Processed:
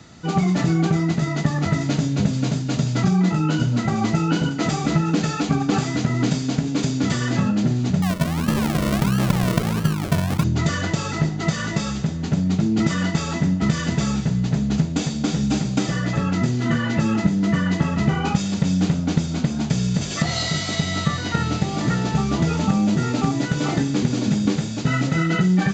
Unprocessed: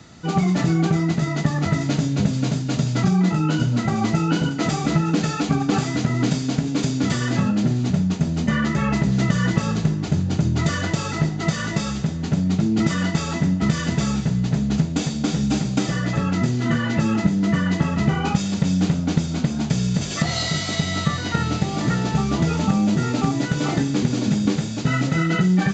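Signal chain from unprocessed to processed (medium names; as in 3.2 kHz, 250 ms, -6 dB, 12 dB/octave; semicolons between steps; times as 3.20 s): 8.02–10.44 s: decimation with a swept rate 42×, swing 60% 1.5 Hz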